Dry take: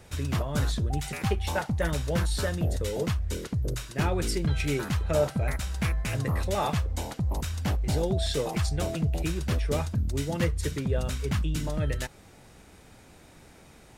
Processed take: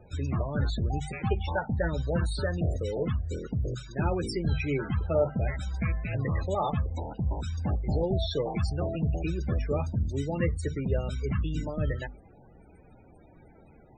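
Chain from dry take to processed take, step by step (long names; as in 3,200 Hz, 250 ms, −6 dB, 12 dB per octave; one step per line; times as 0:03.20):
mains-hum notches 50/100/150/200/250 Hz
spectral peaks only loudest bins 32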